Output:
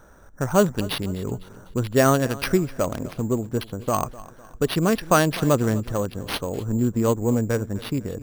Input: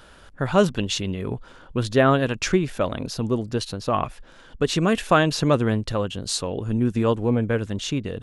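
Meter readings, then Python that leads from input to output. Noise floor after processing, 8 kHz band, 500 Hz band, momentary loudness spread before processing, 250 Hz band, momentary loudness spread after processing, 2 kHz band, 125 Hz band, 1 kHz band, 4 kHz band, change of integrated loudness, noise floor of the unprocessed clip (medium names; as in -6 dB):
-47 dBFS, +1.0 dB, 0.0 dB, 9 LU, 0.0 dB, 10 LU, -1.5 dB, 0.0 dB, -0.5 dB, -3.5 dB, -0.5 dB, -49 dBFS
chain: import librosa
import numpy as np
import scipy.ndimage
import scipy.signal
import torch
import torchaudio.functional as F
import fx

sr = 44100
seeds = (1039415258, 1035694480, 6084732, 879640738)

y = fx.wiener(x, sr, points=15)
y = fx.echo_feedback(y, sr, ms=252, feedback_pct=45, wet_db=-19)
y = np.repeat(y[::6], 6)[:len(y)]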